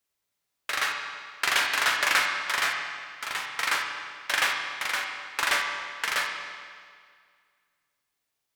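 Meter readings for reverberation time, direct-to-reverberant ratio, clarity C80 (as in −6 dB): 2.0 s, 1.0 dB, 4.5 dB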